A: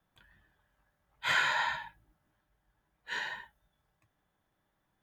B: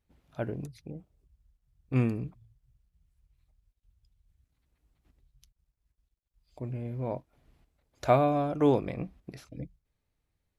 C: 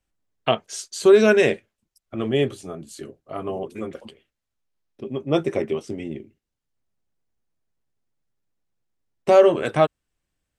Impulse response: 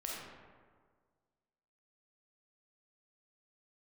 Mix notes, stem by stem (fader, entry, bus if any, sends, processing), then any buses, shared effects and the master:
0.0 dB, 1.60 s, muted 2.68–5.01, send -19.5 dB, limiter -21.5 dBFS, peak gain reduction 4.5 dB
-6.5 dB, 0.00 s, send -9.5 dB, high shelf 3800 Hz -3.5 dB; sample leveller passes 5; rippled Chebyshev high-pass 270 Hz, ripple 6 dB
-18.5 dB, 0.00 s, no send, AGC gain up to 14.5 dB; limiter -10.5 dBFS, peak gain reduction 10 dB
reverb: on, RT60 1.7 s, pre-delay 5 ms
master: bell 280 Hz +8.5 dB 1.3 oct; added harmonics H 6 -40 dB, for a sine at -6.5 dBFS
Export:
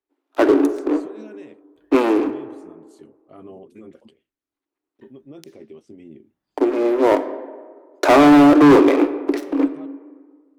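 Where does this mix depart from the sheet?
stem A 0.0 dB -> -8.0 dB; stem B -6.5 dB -> +5.5 dB; stem C -18.5 dB -> -26.5 dB

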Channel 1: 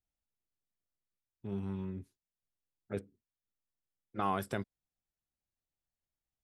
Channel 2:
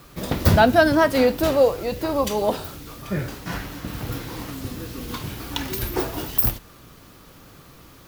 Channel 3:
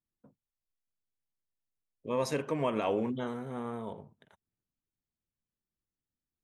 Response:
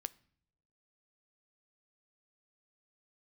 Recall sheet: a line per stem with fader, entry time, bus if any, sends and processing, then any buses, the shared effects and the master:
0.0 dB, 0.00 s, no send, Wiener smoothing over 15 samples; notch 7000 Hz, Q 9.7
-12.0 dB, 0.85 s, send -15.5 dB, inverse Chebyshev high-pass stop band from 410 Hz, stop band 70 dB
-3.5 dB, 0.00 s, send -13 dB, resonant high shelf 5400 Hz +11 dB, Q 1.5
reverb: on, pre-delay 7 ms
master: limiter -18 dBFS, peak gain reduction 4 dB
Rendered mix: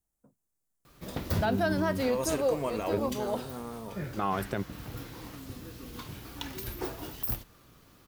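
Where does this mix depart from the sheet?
stem 1 0.0 dB -> +6.5 dB; stem 2: missing inverse Chebyshev high-pass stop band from 410 Hz, stop band 70 dB

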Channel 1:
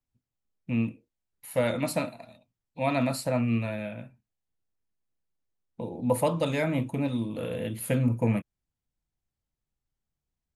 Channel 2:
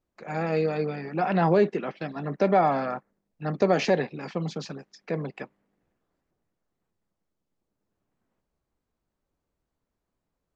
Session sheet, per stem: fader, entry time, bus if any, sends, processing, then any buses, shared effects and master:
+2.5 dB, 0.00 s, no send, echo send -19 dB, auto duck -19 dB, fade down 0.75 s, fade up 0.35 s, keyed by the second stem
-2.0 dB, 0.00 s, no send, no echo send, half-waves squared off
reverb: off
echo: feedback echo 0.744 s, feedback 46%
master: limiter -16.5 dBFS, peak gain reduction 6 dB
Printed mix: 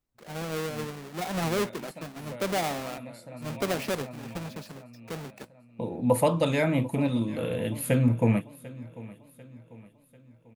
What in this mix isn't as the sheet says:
stem 2 -2.0 dB -> -11.0 dB; master: missing limiter -16.5 dBFS, peak gain reduction 6 dB

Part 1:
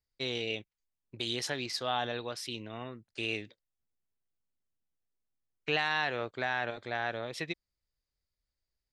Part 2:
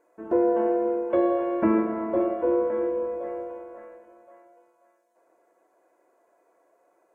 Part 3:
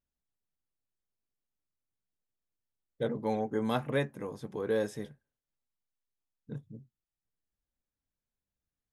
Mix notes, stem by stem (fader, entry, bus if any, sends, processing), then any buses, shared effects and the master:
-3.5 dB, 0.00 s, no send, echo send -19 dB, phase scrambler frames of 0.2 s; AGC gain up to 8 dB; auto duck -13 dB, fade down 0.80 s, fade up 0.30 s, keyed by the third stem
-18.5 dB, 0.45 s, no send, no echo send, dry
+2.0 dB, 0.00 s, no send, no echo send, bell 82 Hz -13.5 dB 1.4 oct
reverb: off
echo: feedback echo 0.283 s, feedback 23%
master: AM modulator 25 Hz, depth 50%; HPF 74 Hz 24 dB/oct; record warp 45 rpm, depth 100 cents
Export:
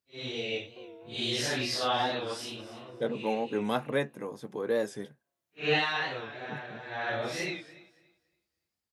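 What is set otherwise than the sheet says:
stem 2 -18.5 dB -> -27.0 dB; master: missing AM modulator 25 Hz, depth 50%

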